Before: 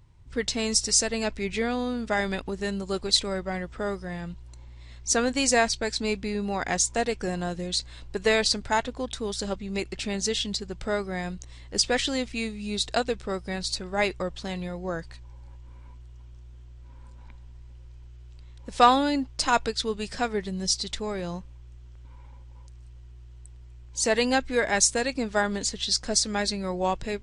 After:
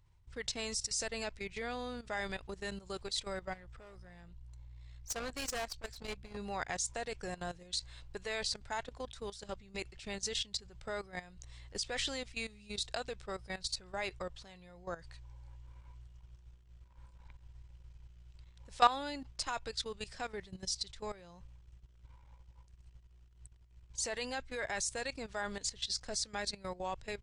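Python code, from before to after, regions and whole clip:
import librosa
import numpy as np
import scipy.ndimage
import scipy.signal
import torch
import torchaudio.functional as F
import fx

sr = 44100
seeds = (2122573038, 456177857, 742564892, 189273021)

y = fx.chain(x, sr, fx.low_shelf(hz=90.0, db=11.0),
    fx.tube_stage(drive_db=28.0, bias=0.4),
    fx.env_flatten(amount_pct=50), at=(3.53, 6.37))
y = fx.dynamic_eq(y, sr, hz=110.0, q=2.7, threshold_db=-56.0, ratio=4.0, max_db=5)
y = fx.level_steps(y, sr, step_db=15)
y = fx.peak_eq(y, sr, hz=240.0, db=-9.5, octaves=1.6)
y = y * 10.0 ** (-5.0 / 20.0)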